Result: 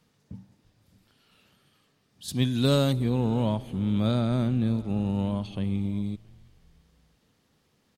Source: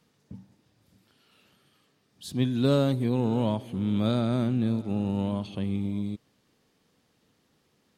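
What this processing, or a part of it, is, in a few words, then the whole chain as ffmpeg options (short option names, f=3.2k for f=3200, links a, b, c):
low shelf boost with a cut just above: -filter_complex "[0:a]asettb=1/sr,asplit=3[a][b][c];[a]atrim=end=2.284[d];[b]atrim=start=2.28:end=2.93,asetpts=PTS-STARTPTS,afade=t=in:d=0.004:c=qsin,afade=t=out:st=0.646:d=0.004:c=qsin,highshelf=f=2.7k:g=9.5[e];[c]atrim=start=2.926[f];[d][e]acrossfade=d=0.004:c1=hsin:c2=qsin[g];[g][f]acrossfade=d=0.004:c1=qsin:c2=hsin,lowshelf=f=83:g=7.5,equalizer=f=340:t=o:w=0.86:g=-2.5,asplit=4[h][i][j][k];[i]adelay=333,afreqshift=-88,volume=-24dB[l];[j]adelay=666,afreqshift=-176,volume=-29.4dB[m];[k]adelay=999,afreqshift=-264,volume=-34.7dB[n];[h][l][m][n]amix=inputs=4:normalize=0"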